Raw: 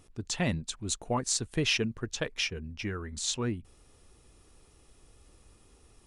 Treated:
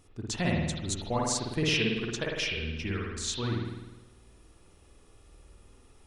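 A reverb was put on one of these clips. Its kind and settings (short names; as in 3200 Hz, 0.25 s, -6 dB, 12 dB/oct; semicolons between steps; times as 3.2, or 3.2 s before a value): spring tank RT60 1.1 s, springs 51 ms, chirp 30 ms, DRR -2 dB; gain -2 dB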